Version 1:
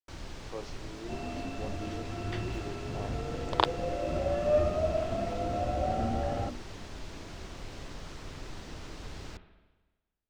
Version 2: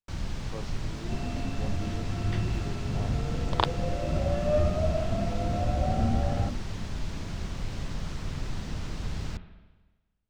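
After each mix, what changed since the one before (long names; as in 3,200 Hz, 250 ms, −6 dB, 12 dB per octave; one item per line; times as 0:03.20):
first sound +4.0 dB
master: add low shelf with overshoot 250 Hz +6.5 dB, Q 1.5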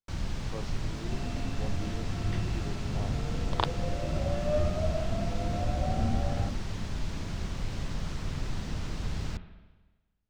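second sound −3.5 dB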